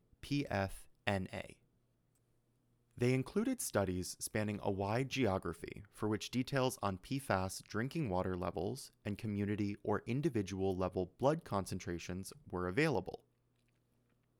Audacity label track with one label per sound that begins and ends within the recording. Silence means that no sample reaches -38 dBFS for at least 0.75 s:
3.010000	13.150000	sound